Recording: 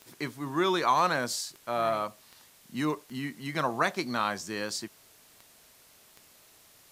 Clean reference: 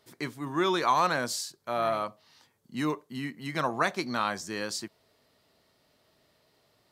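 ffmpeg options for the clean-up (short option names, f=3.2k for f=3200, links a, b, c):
-af "adeclick=t=4,afftdn=nr=10:nf=-58"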